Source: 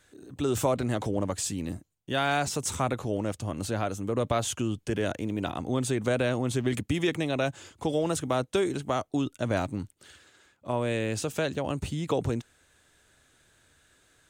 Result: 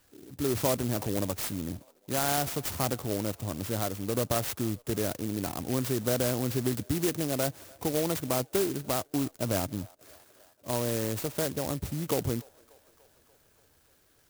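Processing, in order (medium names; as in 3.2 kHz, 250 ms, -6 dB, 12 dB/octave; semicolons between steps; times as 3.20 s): feedback echo behind a band-pass 292 ms, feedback 65%, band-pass 1 kHz, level -23 dB; sampling jitter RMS 0.13 ms; trim -1.5 dB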